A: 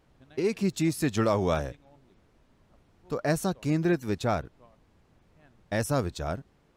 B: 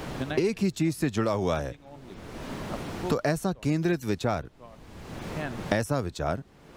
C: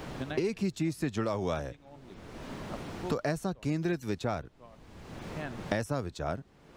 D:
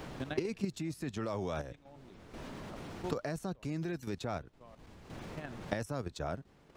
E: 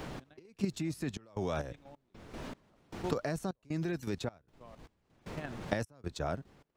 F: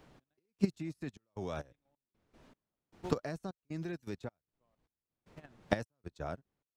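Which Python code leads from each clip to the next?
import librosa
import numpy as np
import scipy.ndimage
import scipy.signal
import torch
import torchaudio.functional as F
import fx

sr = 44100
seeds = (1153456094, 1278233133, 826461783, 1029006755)

y1 = fx.band_squash(x, sr, depth_pct=100)
y2 = fx.peak_eq(y1, sr, hz=13000.0, db=-4.5, octaves=0.8)
y2 = F.gain(torch.from_numpy(y2), -5.0).numpy()
y3 = fx.level_steps(y2, sr, step_db=9)
y4 = fx.step_gate(y3, sr, bpm=77, pattern='x..xxx.xxx.x', floor_db=-24.0, edge_ms=4.5)
y4 = F.gain(torch.from_numpy(y4), 2.5).numpy()
y5 = fx.upward_expand(y4, sr, threshold_db=-47.0, expansion=2.5)
y5 = F.gain(torch.from_numpy(y5), 4.0).numpy()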